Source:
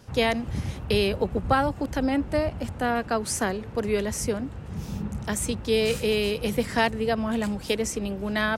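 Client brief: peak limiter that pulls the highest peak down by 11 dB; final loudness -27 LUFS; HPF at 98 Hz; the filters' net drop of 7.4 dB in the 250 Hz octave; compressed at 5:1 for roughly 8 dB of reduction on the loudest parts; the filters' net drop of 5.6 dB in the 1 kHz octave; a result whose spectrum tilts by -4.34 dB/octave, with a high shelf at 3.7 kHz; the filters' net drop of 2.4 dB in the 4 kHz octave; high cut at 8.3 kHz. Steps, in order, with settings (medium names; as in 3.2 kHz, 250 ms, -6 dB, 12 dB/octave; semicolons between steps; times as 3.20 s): high-pass 98 Hz; low-pass 8.3 kHz; peaking EQ 250 Hz -8.5 dB; peaking EQ 1 kHz -7.5 dB; treble shelf 3.7 kHz +5.5 dB; peaking EQ 4 kHz -6 dB; compression 5:1, threshold -31 dBFS; trim +12 dB; peak limiter -17.5 dBFS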